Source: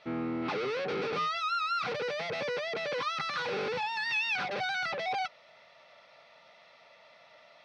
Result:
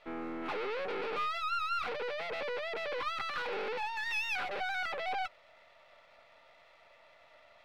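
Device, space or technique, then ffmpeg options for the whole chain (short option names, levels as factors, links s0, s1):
crystal radio: -af "highpass=330,lowpass=3400,aeval=exprs='if(lt(val(0),0),0.447*val(0),val(0))':c=same"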